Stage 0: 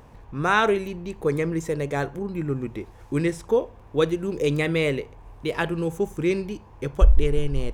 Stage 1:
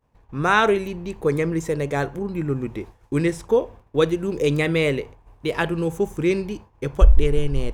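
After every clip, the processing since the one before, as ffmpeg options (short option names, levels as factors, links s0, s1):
-af "agate=range=0.0224:threshold=0.0158:ratio=3:detection=peak,volume=1.33"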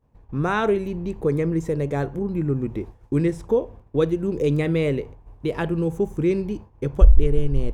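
-filter_complex "[0:a]asplit=2[s0][s1];[s1]acompressor=threshold=0.0398:ratio=6,volume=0.794[s2];[s0][s2]amix=inputs=2:normalize=0,tiltshelf=f=710:g=5.5,volume=0.531"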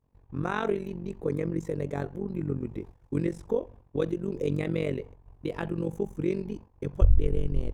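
-af "tremolo=f=46:d=0.857,volume=0.631"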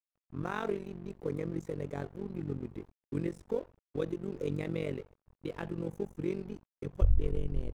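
-af "aeval=exprs='sgn(val(0))*max(abs(val(0))-0.00355,0)':c=same,volume=0.531"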